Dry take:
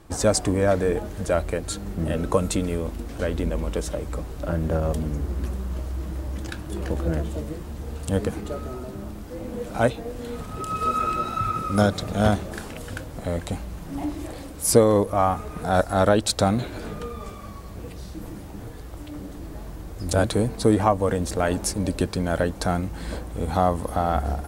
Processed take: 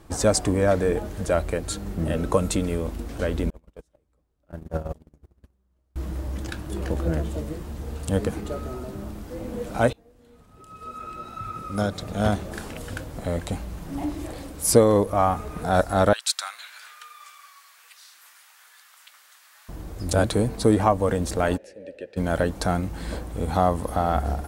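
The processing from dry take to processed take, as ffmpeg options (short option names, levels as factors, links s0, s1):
-filter_complex "[0:a]asettb=1/sr,asplit=3[s0][s1][s2];[s0]atrim=end=3.504[s3];[s1]atrim=start=3.5:end=5.96,asetpts=PTS-STARTPTS,afade=t=in:d=0.004:c=qsin,afade=t=out:st=2.456:d=0.004:c=qsin,agate=range=0.01:threshold=0.0794:ratio=16:release=100:detection=peak[s4];[s2]atrim=start=5.956[s5];[s3][s4]acrossfade=d=0.004:c1=hsin:c2=qsin[s6];[s6][s5]acrossfade=d=0.004:c1=qsin:c2=hsin,asettb=1/sr,asplit=3[s7][s8][s9];[s7]atrim=end=16.134[s10];[s8]atrim=start=16.13:end=19.69,asetpts=PTS-STARTPTS,afade=t=in:d=0.004:c=qsin,afade=t=out:st=3.556:d=0.004:c=qsin,highpass=f=1300:w=0.5412,highpass=f=1300:w=1.3066[s11];[s9]atrim=start=19.686[s12];[s10][s11]acrossfade=d=0.004:c1=hsin:c2=qsin[s13];[s13][s12]acrossfade=d=0.004:c1=qsin:c2=hsin,asplit=3[s14][s15][s16];[s14]afade=t=out:st=21.56:d=0.02[s17];[s15]asplit=3[s18][s19][s20];[s18]bandpass=f=530:t=q:w=8,volume=1[s21];[s19]bandpass=f=1840:t=q:w=8,volume=0.501[s22];[s20]bandpass=f=2480:t=q:w=8,volume=0.355[s23];[s21][s22][s23]amix=inputs=3:normalize=0,afade=t=in:st=21.56:d=0.02,afade=t=out:st=22.16:d=0.02[s24];[s16]afade=t=in:st=22.16:d=0.02[s25];[s17][s24][s25]amix=inputs=3:normalize=0,asplit=2[s26][s27];[s26]atrim=end=9.93,asetpts=PTS-STARTPTS,afade=t=out:st=9.926:d=0.004:c=hsin:silence=0.0749894[s28];[s27]atrim=start=9.93,asetpts=PTS-STARTPTS,afade=t=in:d=2.75:c=qua:silence=0.0749894[s29];[s28][s29]concat=n=2:v=0:a=1"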